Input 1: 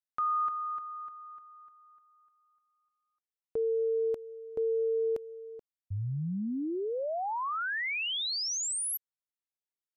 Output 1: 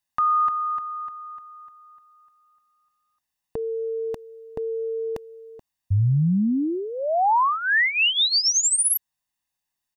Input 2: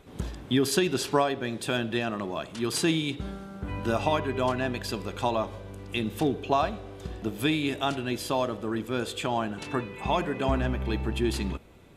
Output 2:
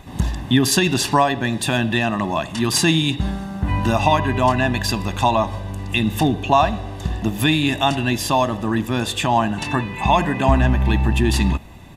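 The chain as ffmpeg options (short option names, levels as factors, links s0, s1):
-filter_complex "[0:a]asplit=2[s0][s1];[s1]alimiter=limit=0.0891:level=0:latency=1:release=159,volume=0.891[s2];[s0][s2]amix=inputs=2:normalize=0,aecho=1:1:1.1:0.66,volume=1.78"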